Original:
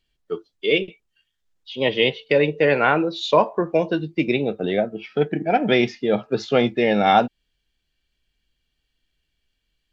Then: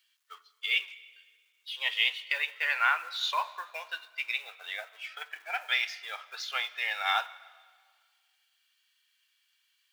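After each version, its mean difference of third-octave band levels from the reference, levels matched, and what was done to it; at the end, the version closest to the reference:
17.5 dB: mu-law and A-law mismatch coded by mu
inverse Chebyshev high-pass filter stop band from 250 Hz, stop band 70 dB
dense smooth reverb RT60 1.7 s, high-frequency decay 0.95×, DRR 16 dB
level −4 dB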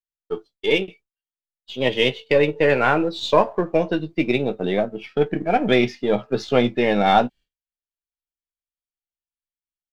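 2.0 dB: gain on one half-wave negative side −3 dB
downward expander −40 dBFS
double-tracking delay 16 ms −12.5 dB
level +1 dB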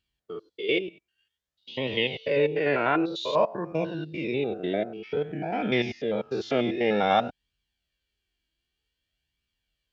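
4.0 dB: spectrum averaged block by block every 100 ms
high-pass filter 57 Hz
flanger 0.53 Hz, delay 0.7 ms, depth 2.5 ms, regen +44%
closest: second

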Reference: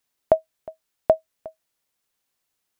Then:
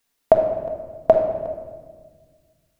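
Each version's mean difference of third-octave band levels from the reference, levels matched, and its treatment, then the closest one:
6.5 dB: rectangular room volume 1,600 cubic metres, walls mixed, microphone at 1.7 metres
level +3 dB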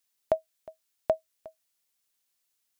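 1.0 dB: high-shelf EQ 2,200 Hz +10.5 dB
level −9 dB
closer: second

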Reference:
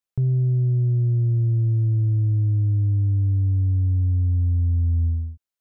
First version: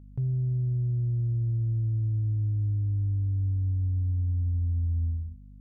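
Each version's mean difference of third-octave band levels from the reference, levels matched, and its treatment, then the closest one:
2.0 dB: dynamic equaliser 390 Hz, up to −5 dB, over −39 dBFS, Q 0.8
mains hum 50 Hz, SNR 21 dB
level −6.5 dB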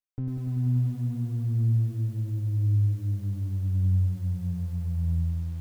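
7.5 dB: lower of the sound and its delayed copy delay 9.5 ms
feedback echo at a low word length 96 ms, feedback 80%, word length 8 bits, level −5 dB
level −8.5 dB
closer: first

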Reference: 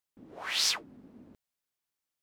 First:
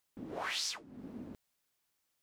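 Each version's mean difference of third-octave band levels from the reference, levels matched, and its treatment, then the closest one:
8.5 dB: dynamic equaliser 6,800 Hz, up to +7 dB, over −41 dBFS, Q 0.74
in parallel at +0.5 dB: brickwall limiter −25.5 dBFS, peak gain reduction 16 dB
on the sum: downward compressor 6 to 1, threshold −37 dBFS, peak gain reduction 19 dB
level +1 dB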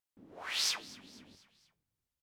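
5.0 dB: flanger 1.2 Hz, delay 9.5 ms, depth 1.8 ms, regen +76%
pitch vibrato 1.6 Hz 7.6 cents
echo with shifted repeats 239 ms, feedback 50%, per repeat −46 Hz, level −20 dB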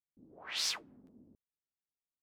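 2.5 dB: low-pass that shuts in the quiet parts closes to 320 Hz, open at −27.5 dBFS
regular buffer underruns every 0.44 s, samples 512, repeat, from 0:00.62
level −6.5 dB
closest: third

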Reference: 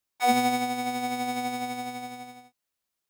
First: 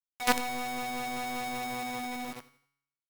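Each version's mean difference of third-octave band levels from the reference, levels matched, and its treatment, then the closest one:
6.5 dB: in parallel at −2.5 dB: brickwall limiter −22 dBFS, peak gain reduction 11.5 dB
on the sum: log-companded quantiser 2 bits
tuned comb filter 140 Hz, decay 0.74 s, harmonics all, mix 60%
repeating echo 85 ms, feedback 34%, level −20 dB
level −2.5 dB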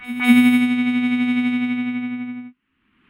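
10.0 dB: low-pass that shuts in the quiet parts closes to 1,300 Hz, open at −21 dBFS
drawn EQ curve 160 Hz 0 dB, 250 Hz +11 dB, 620 Hz −24 dB, 1,100 Hz −3 dB, 2,900 Hz +9 dB, 5,600 Hz −22 dB, 10,000 Hz −2 dB
in parallel at +0.5 dB: upward compression, threshold −23 dBFS
on the sum: echo ahead of the sound 200 ms −16 dB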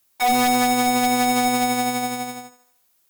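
4.5 dB: high-shelf EQ 9,000 Hz +10.5 dB
brickwall limiter −16.5 dBFS, peak gain reduction 8.5 dB
sine wavefolder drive 7 dB, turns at −16.5 dBFS
feedback echo with a high-pass in the loop 77 ms, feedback 50%, high-pass 290 Hz, level −14 dB
level +2 dB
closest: third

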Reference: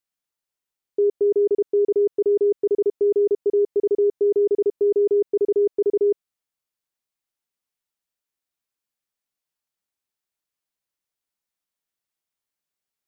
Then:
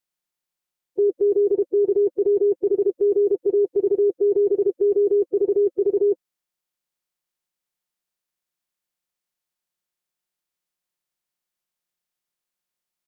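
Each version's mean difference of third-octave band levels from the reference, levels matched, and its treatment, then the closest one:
1.5 dB: spectral magnitudes quantised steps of 30 dB
comb filter 5.6 ms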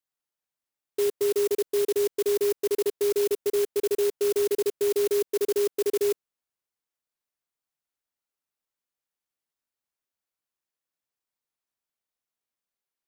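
14.5 dB: high-pass filter 400 Hz 6 dB per octave
converter with an unsteady clock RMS 0.092 ms
level −2.5 dB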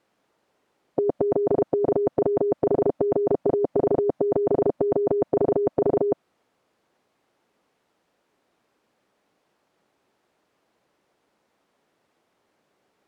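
9.5 dB: resonant band-pass 400 Hz, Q 0.73
every bin compressed towards the loudest bin 4 to 1
level +6.5 dB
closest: first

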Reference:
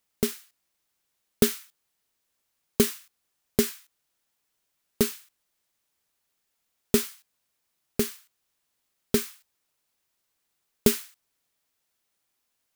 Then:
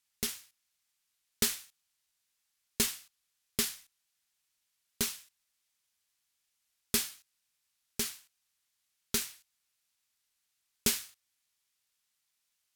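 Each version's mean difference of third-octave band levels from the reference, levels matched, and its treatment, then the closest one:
6.0 dB: bad sample-rate conversion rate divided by 2×, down none, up hold
guitar amp tone stack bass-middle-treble 5-5-5
level +4 dB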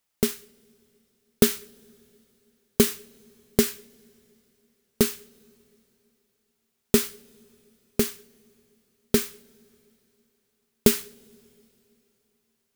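3.0 dB: in parallel at −9 dB: bit-depth reduction 6 bits, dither none
on the sum: coupled-rooms reverb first 0.28 s, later 3.3 s, from −18 dB, DRR 19 dB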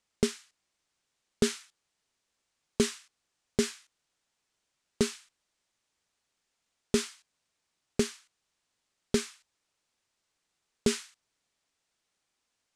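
4.0 dB: low-pass filter 8,500 Hz 24 dB per octave
brickwall limiter −11 dBFS, peak gain reduction 6.5 dB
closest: second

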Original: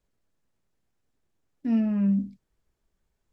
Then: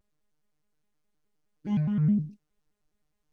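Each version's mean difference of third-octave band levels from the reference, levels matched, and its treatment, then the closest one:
5.5 dB: phases set to zero 179 Hz
pitch modulation by a square or saw wave square 4.8 Hz, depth 250 cents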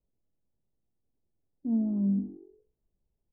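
4.0 dB: Bessel low-pass filter 550 Hz, order 8
echo with shifted repeats 80 ms, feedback 60%, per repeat +46 Hz, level −18.5 dB
level −3.5 dB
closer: second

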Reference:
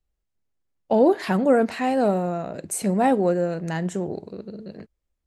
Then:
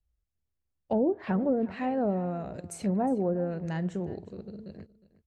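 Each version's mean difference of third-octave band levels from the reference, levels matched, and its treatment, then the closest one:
4.5 dB: treble cut that deepens with the level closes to 490 Hz, closed at −14 dBFS
parametric band 66 Hz +15 dB 1.8 octaves
on a send: single-tap delay 361 ms −19 dB
on the sum: level −8.5 dB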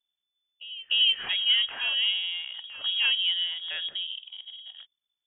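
17.0 dB: low-shelf EQ 170 Hz −5.5 dB
echo ahead of the sound 299 ms −18 dB
voice inversion scrambler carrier 3,500 Hz
level −5 dB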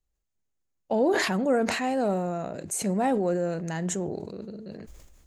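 2.5 dB: parametric band 6,700 Hz +8.5 dB 0.31 octaves
in parallel at −2.5 dB: brickwall limiter −18 dBFS, peak gain reduction 11 dB
on the sum: level that may fall only so fast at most 39 dB per second
level −8.5 dB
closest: third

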